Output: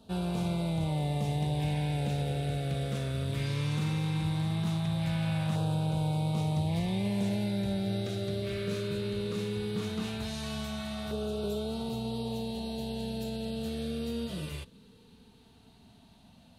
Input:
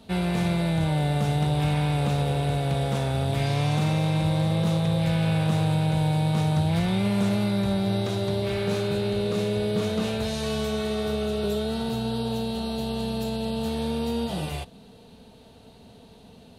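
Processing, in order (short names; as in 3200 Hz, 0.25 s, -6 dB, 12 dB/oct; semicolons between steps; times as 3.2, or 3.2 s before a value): LFO notch saw down 0.18 Hz 400–2100 Hz; gain -6.5 dB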